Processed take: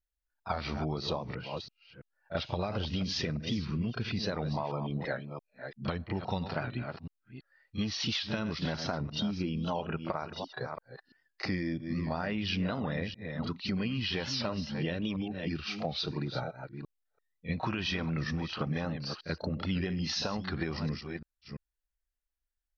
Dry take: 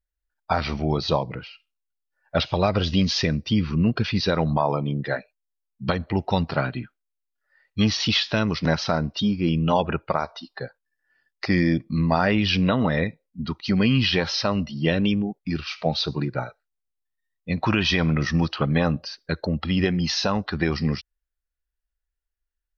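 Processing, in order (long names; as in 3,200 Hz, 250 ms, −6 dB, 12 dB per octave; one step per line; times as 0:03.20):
delay that plays each chunk backwards 337 ms, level −11.5 dB
downward compressor, threshold −25 dBFS, peak gain reduction 10 dB
on a send: backwards echo 33 ms −11 dB
on the sum: wow of a warped record 78 rpm, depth 100 cents
level −5 dB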